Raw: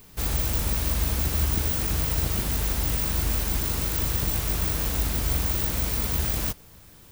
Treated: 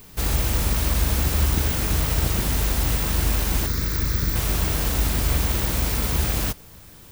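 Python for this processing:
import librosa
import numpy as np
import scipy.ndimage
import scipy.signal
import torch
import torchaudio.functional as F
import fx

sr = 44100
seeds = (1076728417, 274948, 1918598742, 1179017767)

y = fx.fixed_phaser(x, sr, hz=2900.0, stages=6, at=(3.66, 4.36))
y = fx.slew_limit(y, sr, full_power_hz=390.0)
y = y * 10.0 ** (4.5 / 20.0)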